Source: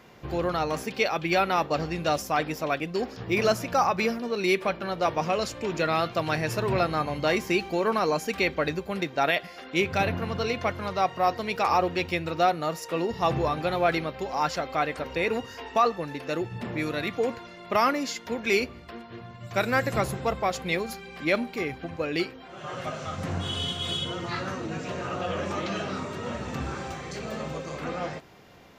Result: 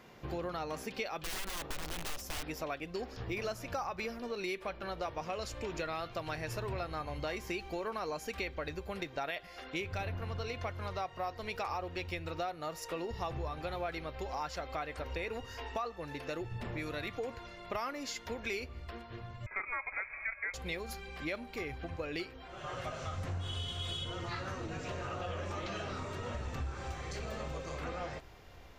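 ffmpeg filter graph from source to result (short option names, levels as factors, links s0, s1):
-filter_complex "[0:a]asettb=1/sr,asplit=3[s0][s1][s2];[s0]atrim=end=1.174[s3];[s1]atrim=start=1.17:end=2.44,asetpts=PTS-STARTPTS,afade=t=in:d=0.004:c=qsin,afade=t=out:st=1.266:d=0.004:c=qsin,acompressor=threshold=0.0631:ratio=5:attack=3.2:release=140:knee=1:detection=peak,aeval=exprs='(mod(21.1*val(0)+1,2)-1)/21.1':c=same[s4];[s2]atrim=start=2.436[s5];[s3][s4]acrossfade=d=0.004:c1=hsin:c2=qsin[s6];[s6][s5]acrossfade=d=0.004:c1=qsin:c2=hsin,asettb=1/sr,asplit=3[s7][s8][s9];[s7]atrim=end=19.464[s10];[s8]atrim=start=19.46:end=20.54,asetpts=PTS-STARTPTS,afade=t=in:d=0.004:c=qsin,afade=t=out:st=1.076:d=0.004:c=qsin,highpass=f=260:w=0.5412,highpass=f=260:w=1.3066,acrusher=bits=8:mode=log:mix=0:aa=0.000001,lowpass=f=2300:t=q:w=0.5098,lowpass=f=2300:t=q:w=0.6013,lowpass=f=2300:t=q:w=0.9,lowpass=f=2300:t=q:w=2.563,afreqshift=-2700[s11];[s9]atrim=start=20.536[s12];[s10][s11]acrossfade=d=0.004:c1=hsin:c2=qsin[s13];[s13][s12]acrossfade=d=0.004:c1=qsin:c2=hsin,asubboost=boost=11:cutoff=54,acompressor=threshold=0.0251:ratio=4,volume=0.631"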